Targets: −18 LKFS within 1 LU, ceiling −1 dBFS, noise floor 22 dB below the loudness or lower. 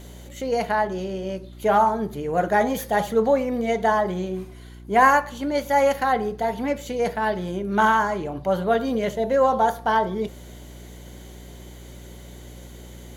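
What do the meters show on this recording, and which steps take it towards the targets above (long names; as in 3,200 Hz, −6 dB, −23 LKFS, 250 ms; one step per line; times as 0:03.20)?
mains hum 60 Hz; hum harmonics up to 360 Hz; level of the hum −40 dBFS; integrated loudness −22.5 LKFS; sample peak −3.5 dBFS; target loudness −18.0 LKFS
→ hum removal 60 Hz, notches 6
level +4.5 dB
brickwall limiter −1 dBFS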